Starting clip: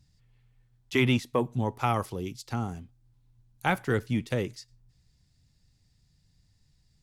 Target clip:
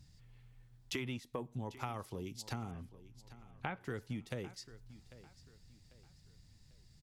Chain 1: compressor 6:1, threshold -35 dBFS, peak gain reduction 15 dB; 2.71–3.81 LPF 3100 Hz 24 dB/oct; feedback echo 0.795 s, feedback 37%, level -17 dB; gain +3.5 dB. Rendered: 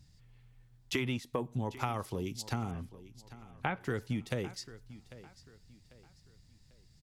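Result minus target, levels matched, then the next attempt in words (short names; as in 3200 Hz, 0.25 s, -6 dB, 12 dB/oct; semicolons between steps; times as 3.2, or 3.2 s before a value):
compressor: peak gain reduction -6.5 dB
compressor 6:1, threshold -43 dBFS, peak gain reduction 21.5 dB; 2.71–3.81 LPF 3100 Hz 24 dB/oct; feedback echo 0.795 s, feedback 37%, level -17 dB; gain +3.5 dB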